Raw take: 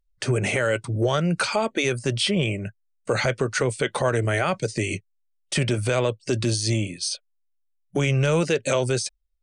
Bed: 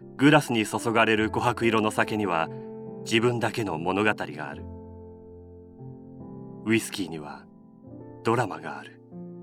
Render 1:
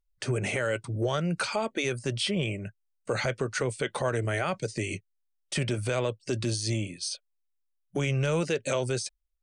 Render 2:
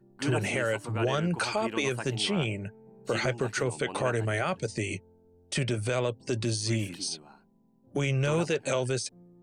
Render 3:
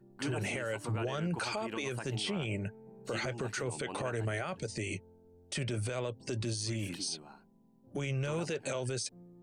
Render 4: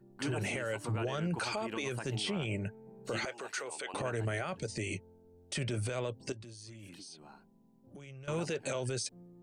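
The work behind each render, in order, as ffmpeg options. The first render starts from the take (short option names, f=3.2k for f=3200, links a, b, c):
-af "volume=-6dB"
-filter_complex "[1:a]volume=-14.5dB[a];[0:a][a]amix=inputs=2:normalize=0"
-af "alimiter=level_in=2.5dB:limit=-24dB:level=0:latency=1:release=78,volume=-2.5dB"
-filter_complex "[0:a]asettb=1/sr,asplit=3[a][b][c];[a]atrim=end=3.254[d];[b]atrim=start=3.25:end=3.94,asetpts=PTS-STARTPTS,afade=t=in:d=0.004:c=qsin,afade=t=out:st=0.686:d=0.004:c=qsin,highpass=570[e];[c]atrim=start=3.936[f];[d][e]acrossfade=d=0.004:c1=hsin:c2=qsin[g];[g][f]acrossfade=d=0.004:c1=qsin:c2=hsin,asettb=1/sr,asplit=3[h][i][j];[h]atrim=end=6.324[k];[i]atrim=start=6.32:end=8.28,asetpts=PTS-STARTPTS,afade=t=in:d=0.004:c=qsin,afade=t=out:st=1.956:d=0.004:c=qsin,acompressor=threshold=-48dB:ratio=5:attack=3.2:release=140:knee=1:detection=peak[l];[j]atrim=start=8.276[m];[k][l]acrossfade=d=0.004:c1=hsin:c2=qsin[n];[n][m]acrossfade=d=0.004:c1=qsin:c2=hsin"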